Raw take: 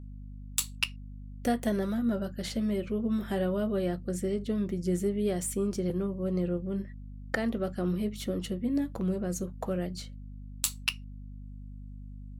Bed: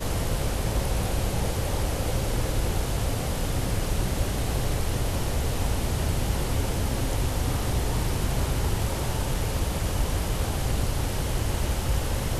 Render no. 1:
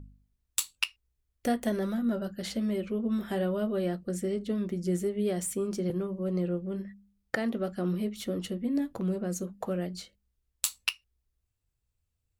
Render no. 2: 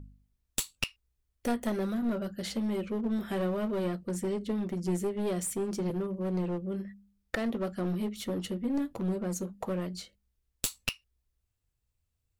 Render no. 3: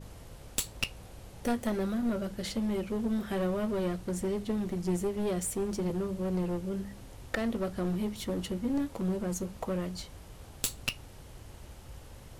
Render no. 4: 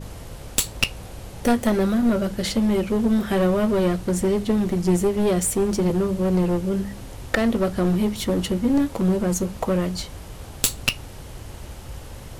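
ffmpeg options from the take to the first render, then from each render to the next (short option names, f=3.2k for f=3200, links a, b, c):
-af "bandreject=f=50:t=h:w=4,bandreject=f=100:t=h:w=4,bandreject=f=150:t=h:w=4,bandreject=f=200:t=h:w=4,bandreject=f=250:t=h:w=4"
-af "aeval=exprs='clip(val(0),-1,0.0335)':c=same"
-filter_complex "[1:a]volume=-22dB[a];[0:a][a]amix=inputs=2:normalize=0"
-af "volume=11dB,alimiter=limit=-1dB:level=0:latency=1"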